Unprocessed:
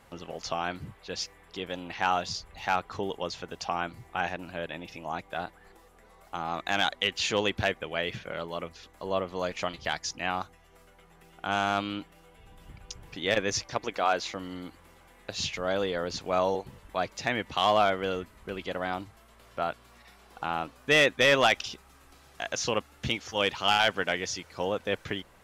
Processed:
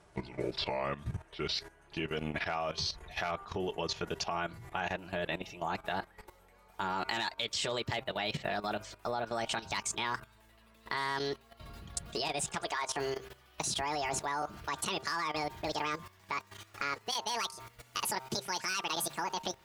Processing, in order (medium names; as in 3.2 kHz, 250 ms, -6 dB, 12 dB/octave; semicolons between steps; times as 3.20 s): gliding tape speed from 74% -> 185%; de-hum 131.6 Hz, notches 12; compression 6:1, threshold -30 dBFS, peak gain reduction 12 dB; comb of notches 260 Hz; level held to a coarse grid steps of 14 dB; trim +8 dB